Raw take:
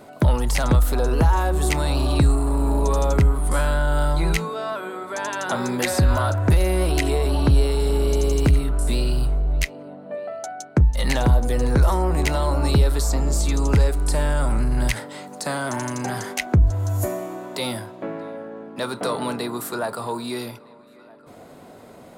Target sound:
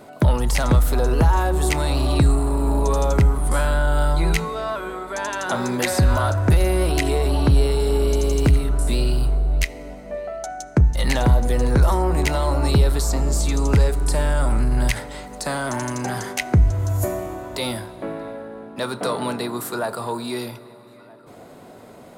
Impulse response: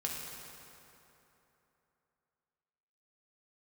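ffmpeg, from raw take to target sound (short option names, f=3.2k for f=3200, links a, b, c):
-filter_complex "[0:a]asplit=2[a][b];[1:a]atrim=start_sample=2205,asetrate=34839,aresample=44100[c];[b][c]afir=irnorm=-1:irlink=0,volume=-19dB[d];[a][d]amix=inputs=2:normalize=0"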